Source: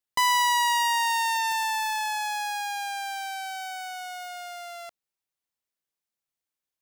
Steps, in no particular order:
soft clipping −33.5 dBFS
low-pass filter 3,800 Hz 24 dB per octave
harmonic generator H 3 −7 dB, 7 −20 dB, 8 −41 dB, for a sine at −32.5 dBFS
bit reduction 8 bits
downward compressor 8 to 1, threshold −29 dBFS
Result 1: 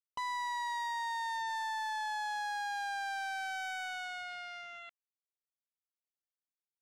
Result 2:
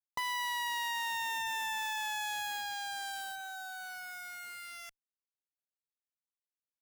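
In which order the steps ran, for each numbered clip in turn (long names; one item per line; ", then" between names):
downward compressor, then harmonic generator, then bit reduction, then low-pass filter, then soft clipping
downward compressor, then low-pass filter, then soft clipping, then bit reduction, then harmonic generator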